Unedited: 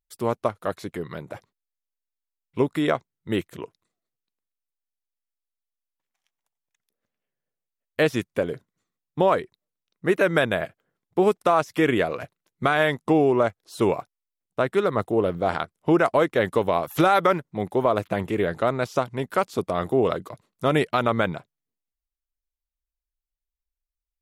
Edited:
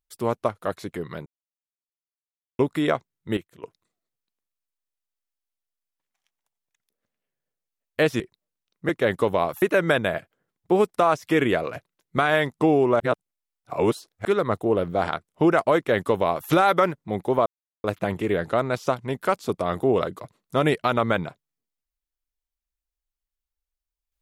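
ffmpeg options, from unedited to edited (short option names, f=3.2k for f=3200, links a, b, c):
-filter_complex "[0:a]asplit=11[a][b][c][d][e][f][g][h][i][j][k];[a]atrim=end=1.26,asetpts=PTS-STARTPTS,afade=t=out:st=1.256:d=0.004:c=hsin[l];[b]atrim=start=1.26:end=2.59,asetpts=PTS-STARTPTS,volume=0[m];[c]atrim=start=2.59:end=3.372,asetpts=PTS-STARTPTS,afade=t=in:d=0.004:c=hsin[n];[d]atrim=start=3.368:end=3.632,asetpts=PTS-STARTPTS,volume=-12dB[o];[e]atrim=start=3.628:end=8.202[p];[f]atrim=start=9.398:end=10.092[q];[g]atrim=start=16.228:end=16.962[r];[h]atrim=start=10.088:end=13.472[s];[i]atrim=start=13.468:end=14.722,asetpts=PTS-STARTPTS,areverse[t];[j]atrim=start=14.718:end=17.93,asetpts=PTS-STARTPTS,afade=t=out:st=3.208:d=0.004:c=hsin,apad=pad_dur=0.38[u];[k]atrim=start=17.93,asetpts=PTS-STARTPTS,afade=t=in:d=0.004:c=hsin[v];[l][m][n]concat=n=3:v=0:a=1[w];[w][o]acrossfade=d=0.004:c1=hsin:c2=hsin[x];[x][p]acrossfade=d=0.004:c1=hsin:c2=hsin[y];[y][q]acrossfade=d=0.004:c1=hsin:c2=hsin[z];[z][r]acrossfade=d=0.004:c1=hsin:c2=hsin[aa];[aa][s]acrossfade=d=0.004:c1=hsin:c2=hsin[ab];[ab][t]acrossfade=d=0.004:c1=hsin:c2=hsin[ac];[u][v]concat=n=2:v=0:a=1[ad];[ac][ad]acrossfade=d=0.004:c1=hsin:c2=hsin"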